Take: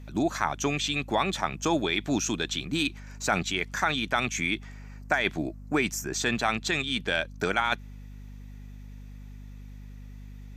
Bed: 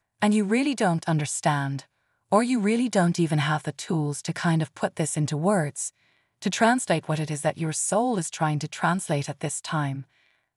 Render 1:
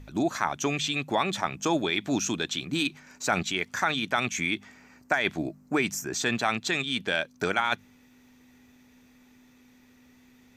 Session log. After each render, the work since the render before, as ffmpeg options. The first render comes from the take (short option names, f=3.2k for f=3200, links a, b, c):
-af "bandreject=f=50:t=h:w=4,bandreject=f=100:t=h:w=4,bandreject=f=150:t=h:w=4,bandreject=f=200:t=h:w=4"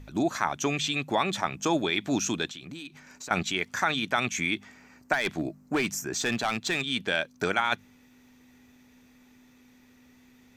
-filter_complex "[0:a]asettb=1/sr,asplit=3[a][b][c];[a]atrim=end=2.494[d];[b]atrim=start=2.49:end=3.31,asetpts=PTS-STARTPTS,afade=t=in:d=0.004:c=qsin,afade=t=out:st=0.816:d=0.004:c=qsin,acompressor=threshold=-38dB:ratio=6:attack=3.2:release=140:knee=1:detection=peak[e];[c]atrim=start=3.306[f];[d][e]acrossfade=d=0.004:c1=hsin:c2=qsin[g];[g][f]acrossfade=d=0.004:c1=qsin:c2=hsin,asettb=1/sr,asplit=3[h][i][j];[h]atrim=end=5.134[k];[i]atrim=start=5.13:end=6.9,asetpts=PTS-STARTPTS,afade=t=in:d=0.004:c=qsin,afade=t=out:st=1.766:d=0.004:c=qsin,asoftclip=type=hard:threshold=-21dB[l];[j]atrim=start=6.896[m];[k][l]acrossfade=d=0.004:c1=hsin:c2=qsin[n];[n][m]acrossfade=d=0.004:c1=qsin:c2=hsin"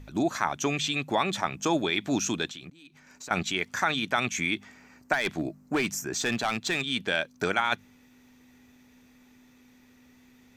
-filter_complex "[0:a]asplit=2[a][b];[a]atrim=end=2.7,asetpts=PTS-STARTPTS,afade=t=out:st=2.696:d=0.004:c=hsin:silence=0.0841395[c];[b]atrim=start=2.7,asetpts=PTS-STARTPTS,afade=t=in:d=0.89:c=qsin:silence=0.0841395[d];[c][d]concat=n=2:v=0:a=1"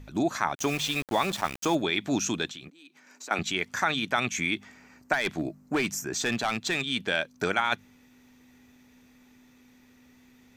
-filter_complex "[0:a]asettb=1/sr,asplit=3[a][b][c];[a]atrim=end=0.554[d];[b]atrim=start=0.55:end=1.75,asetpts=PTS-STARTPTS,afade=t=in:d=0.004:c=qsin,afade=t=out:st=1.196:d=0.004:c=qsin,aeval=exprs='val(0)*gte(abs(val(0)),0.02)':c=same[e];[c]atrim=start=1.746[f];[d][e]acrossfade=d=0.004:c1=hsin:c2=qsin[g];[g][f]acrossfade=d=0.004:c1=qsin:c2=hsin,asettb=1/sr,asplit=3[h][i][j];[h]atrim=end=2.684[k];[i]atrim=start=2.68:end=3.39,asetpts=PTS-STARTPTS,afade=t=in:d=0.004:c=qsin,afade=t=out:st=0.706:d=0.004:c=qsin,highpass=f=240:w=0.5412,highpass=f=240:w=1.3066[l];[j]atrim=start=3.386[m];[k][l]acrossfade=d=0.004:c1=hsin:c2=qsin[n];[n][m]acrossfade=d=0.004:c1=qsin:c2=hsin"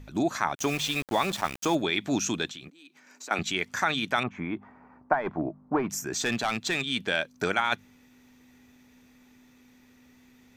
-filter_complex "[0:a]asettb=1/sr,asplit=3[a][b][c];[a]atrim=end=4.234[d];[b]atrim=start=4.23:end=5.9,asetpts=PTS-STARTPTS,afade=t=in:d=0.004:c=qsin,afade=t=out:st=1.666:d=0.004:c=qsin,lowpass=f=1k:t=q:w=2.3[e];[c]atrim=start=5.896[f];[d][e]acrossfade=d=0.004:c1=hsin:c2=qsin[g];[g][f]acrossfade=d=0.004:c1=qsin:c2=hsin"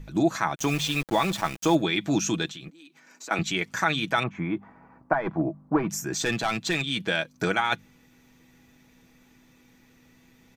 -af "lowshelf=f=280:g=5,aecho=1:1:6.1:0.48"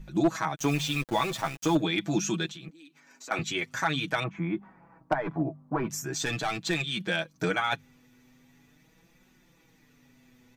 -af "flanger=delay=5.3:depth=2.9:regen=-1:speed=0.43:shape=triangular,volume=16dB,asoftclip=hard,volume=-16dB"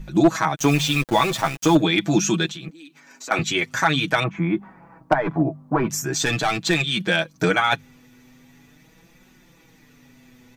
-af "volume=8.5dB"